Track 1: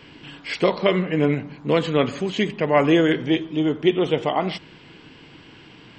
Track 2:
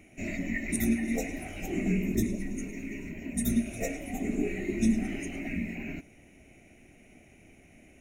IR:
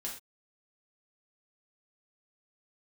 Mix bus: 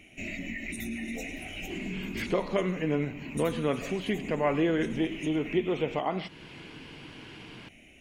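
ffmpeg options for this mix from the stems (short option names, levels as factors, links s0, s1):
-filter_complex "[0:a]acrossover=split=2700[s0][s1];[s1]acompressor=threshold=0.01:ratio=4:attack=1:release=60[s2];[s0][s2]amix=inputs=2:normalize=0,adelay=1700,volume=0.944[s3];[1:a]equalizer=f=3100:w=1.7:g=14,alimiter=limit=0.0794:level=0:latency=1:release=40,volume=0.841[s4];[s3][s4]amix=inputs=2:normalize=0,acompressor=threshold=0.0112:ratio=1.5"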